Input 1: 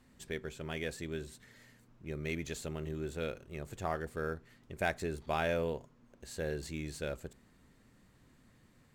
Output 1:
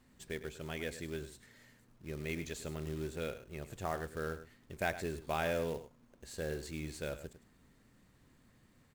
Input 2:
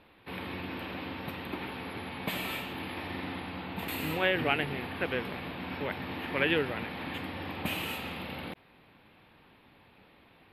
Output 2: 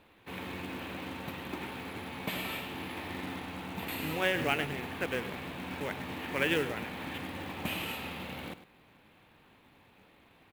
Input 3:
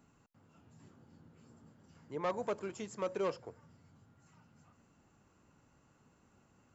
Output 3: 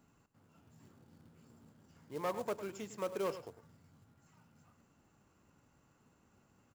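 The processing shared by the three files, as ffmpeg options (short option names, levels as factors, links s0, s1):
-af "aecho=1:1:103:0.224,acrusher=bits=4:mode=log:mix=0:aa=0.000001,volume=0.794"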